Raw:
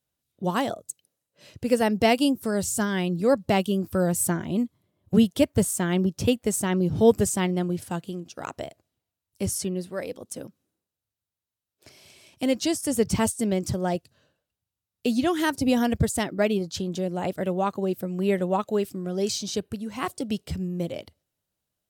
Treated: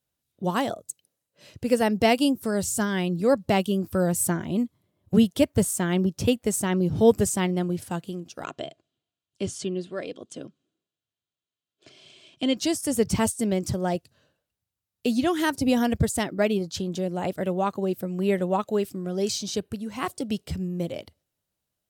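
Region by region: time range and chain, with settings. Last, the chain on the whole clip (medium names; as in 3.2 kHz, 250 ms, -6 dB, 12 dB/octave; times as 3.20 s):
8.44–12.57 s: cabinet simulation 140–7100 Hz, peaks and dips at 150 Hz +6 dB, 870 Hz -7 dB, 2 kHz -4 dB, 3.2 kHz +7 dB, 5.5 kHz -7 dB + comb 2.9 ms, depth 31%
whole clip: none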